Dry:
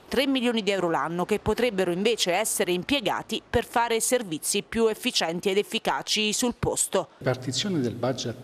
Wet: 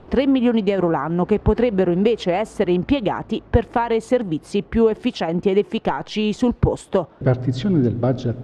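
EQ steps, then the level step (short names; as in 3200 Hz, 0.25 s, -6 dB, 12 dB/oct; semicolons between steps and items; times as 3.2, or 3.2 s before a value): LPF 8300 Hz 12 dB/oct; tilt -3 dB/oct; high shelf 4700 Hz -11.5 dB; +3.0 dB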